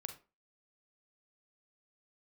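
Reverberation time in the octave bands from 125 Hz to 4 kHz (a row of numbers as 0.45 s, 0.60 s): 0.25 s, 0.35 s, 0.30 s, 0.30 s, 0.25 s, 0.20 s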